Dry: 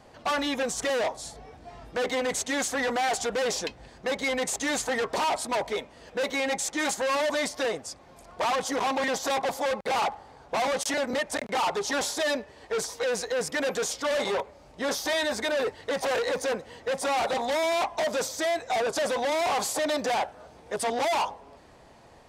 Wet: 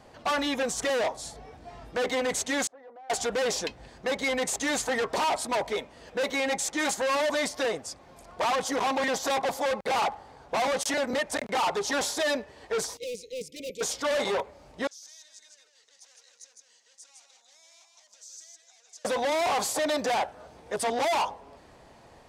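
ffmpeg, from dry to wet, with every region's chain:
-filter_complex "[0:a]asettb=1/sr,asplit=3[a][b][c];[a]atrim=end=2.674[d];[b]atrim=start=2.67:end=3.1,asetpts=PTS-STARTPTS,afade=t=in:d=0.004:c=qsin,afade=t=out:st=0.426:d=0.004:c=qsin,lowpass=f=580:t=q:w=1.5,aderivative[e];[c]atrim=start=3.096[f];[d][e]acrossfade=d=0.004:c1=hsin:c2=qsin[g];[g][f]acrossfade=d=0.004:c1=qsin:c2=hsin,asettb=1/sr,asplit=3[h][i][j];[h]atrim=end=12.974[k];[i]atrim=start=12.97:end=13.81,asetpts=PTS-STARTPTS,afade=t=in:d=0.004:c=qsin,afade=t=out:st=0.836:d=0.004:c=qsin,agate=range=-12dB:threshold=-28dB:ratio=16:release=100:detection=peak,volume=32.5dB,asoftclip=hard,volume=-32.5dB,asuperstop=centerf=1100:order=20:qfactor=0.69[l];[j]atrim=start=13.806[m];[k][l]acrossfade=d=0.004:c1=hsin:c2=qsin[n];[n][m]acrossfade=d=0.004:c1=qsin:c2=hsin,asettb=1/sr,asplit=3[o][p][q];[o]atrim=end=14.874[r];[p]atrim=start=14.87:end=19.05,asetpts=PTS-STARTPTS,afade=t=in:d=0.004:c=qsin,afade=t=out:st=4.176:d=0.004:c=qsin,acompressor=threshold=-39dB:ratio=10:attack=3.2:release=140:knee=1:detection=peak,bandpass=f=6.4k:t=q:w=2.8,aecho=1:1:158:0.631,atrim=end_sample=184338[s];[q]atrim=start=19.046[t];[r][s]acrossfade=d=0.004:c1=hsin:c2=qsin[u];[u][t]acrossfade=d=0.004:c1=qsin:c2=hsin"

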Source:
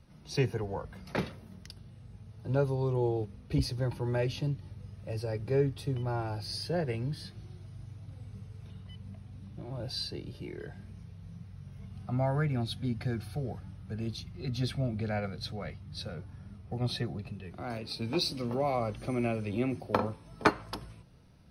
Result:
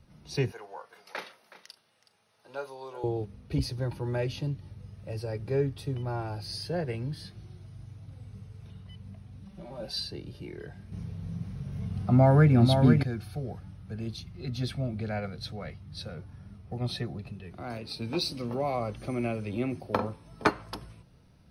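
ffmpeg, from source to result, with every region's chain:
-filter_complex "[0:a]asettb=1/sr,asplit=3[a][b][c];[a]atrim=end=0.524[d];[b]atrim=start=0.52:end=3.04,asetpts=PTS-STARTPTS,afade=t=in:d=0.004:c=qsin,afade=t=out:st=2.516:d=0.004:c=qsin,highpass=770,asplit=2[e][f];[f]adelay=38,volume=-13.5dB[g];[e][g]amix=inputs=2:normalize=0,atrim=end_sample=111132,aecho=1:1:371:0.168,atrim=end_sample=111132[h];[c]atrim=start=3.036[i];[d][h]acrossfade=d=0.004:c1=hsin:c2=qsin[j];[j][i]acrossfade=d=0.004:c1=qsin:c2=hsin,asettb=1/sr,asplit=3[k][l][m];[k]atrim=end=9.454[n];[l]atrim=start=9.45:end=10,asetpts=PTS-STARTPTS,afade=t=in:d=0.004:c=qsin,afade=t=out:st=0.546:d=0.004:c=qsin,equalizer=f=130:t=o:w=0.59:g=-11.5,bandreject=f=360:w=8.9,aecho=1:1:5.2:0.97,atrim=end_sample=24255[o];[m]atrim=start=9.996[p];[n][o]acrossfade=d=0.004:c1=hsin:c2=qsin[q];[q][p]acrossfade=d=0.004:c1=qsin:c2=hsin,asettb=1/sr,asplit=3[r][s][t];[r]atrim=end=10.924[u];[s]atrim=start=10.92:end=13.03,asetpts=PTS-STARTPTS,afade=t=in:d=0.004:c=qsin,afade=t=out:st=2.106:d=0.004:c=qsin,equalizer=f=260:w=0.52:g=6,acontrast=57,aecho=1:1:496:0.562,atrim=end_sample=93051[v];[t]atrim=start=13.026[w];[u][v]acrossfade=d=0.004:c1=hsin:c2=qsin[x];[x][w]acrossfade=d=0.004:c1=qsin:c2=hsin"

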